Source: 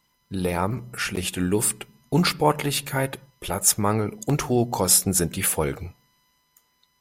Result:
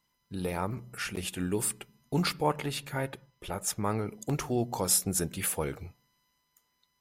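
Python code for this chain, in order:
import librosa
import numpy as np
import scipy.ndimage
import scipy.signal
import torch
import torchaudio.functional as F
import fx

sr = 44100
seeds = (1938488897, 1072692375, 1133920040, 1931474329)

y = fx.high_shelf(x, sr, hz=fx.line((2.46, 8200.0), (3.83, 5400.0)), db=-8.5, at=(2.46, 3.83), fade=0.02)
y = y * 10.0 ** (-8.0 / 20.0)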